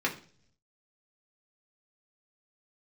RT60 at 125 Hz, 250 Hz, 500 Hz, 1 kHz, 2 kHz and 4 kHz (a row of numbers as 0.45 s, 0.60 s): 1.0 s, 0.75 s, 0.55 s, 0.40 s, 0.40 s, 0.55 s